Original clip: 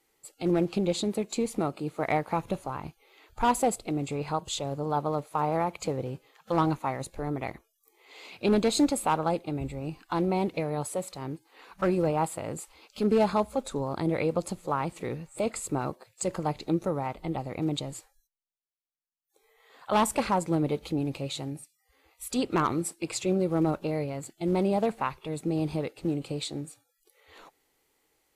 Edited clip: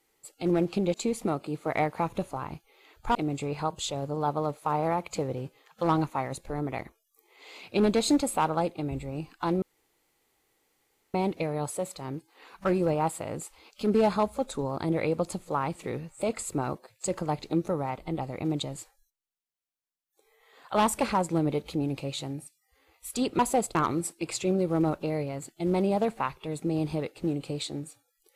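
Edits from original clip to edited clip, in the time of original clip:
0.94–1.27 cut
3.48–3.84 move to 22.56
10.31 insert room tone 1.52 s

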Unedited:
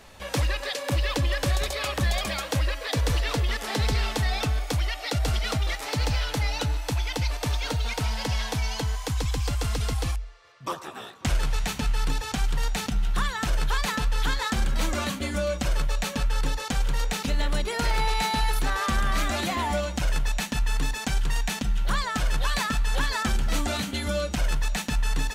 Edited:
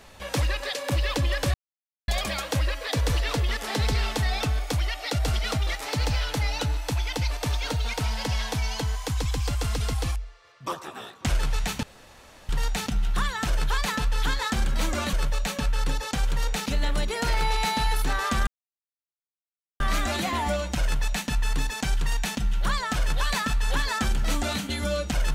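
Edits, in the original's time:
1.54–2.08 mute
11.83–12.49 room tone
15.13–15.7 cut
19.04 insert silence 1.33 s

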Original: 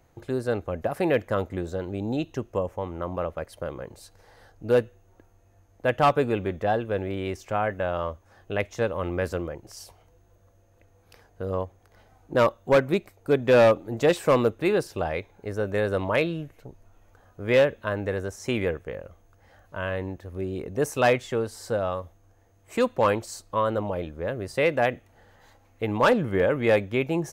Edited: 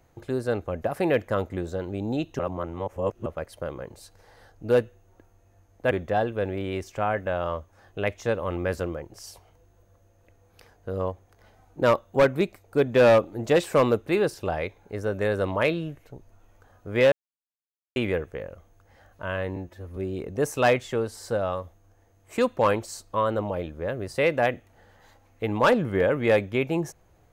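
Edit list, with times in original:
2.39–3.26 reverse
5.91–6.44 cut
17.65–18.49 mute
20.09–20.36 stretch 1.5×

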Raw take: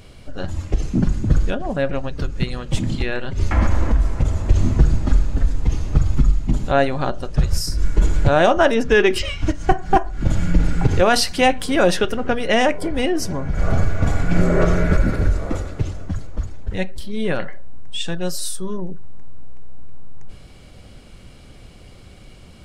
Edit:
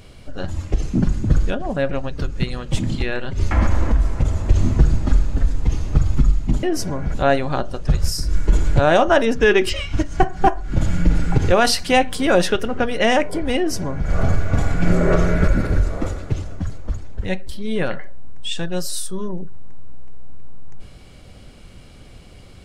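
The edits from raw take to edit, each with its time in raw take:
13.06–13.57 copy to 6.63

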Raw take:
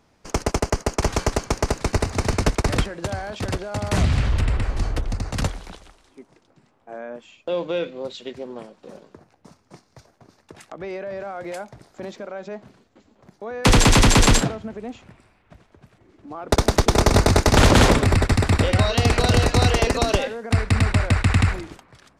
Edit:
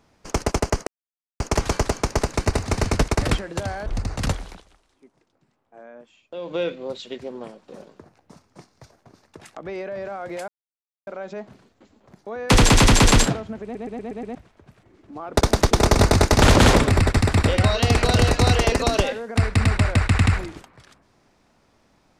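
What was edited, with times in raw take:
0.87 insert silence 0.53 s
3.33–5.01 cut
5.67–7.67 dip -9 dB, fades 0.40 s exponential
11.63–12.22 mute
14.78 stutter in place 0.12 s, 6 plays

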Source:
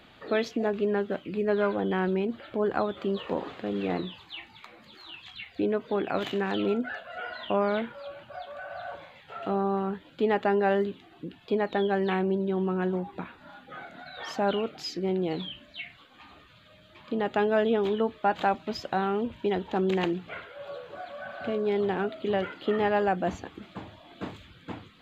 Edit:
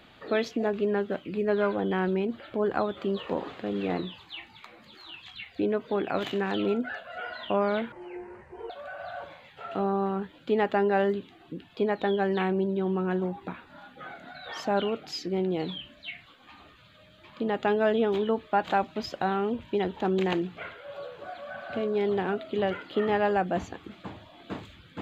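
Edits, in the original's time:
7.92–8.41 speed 63%

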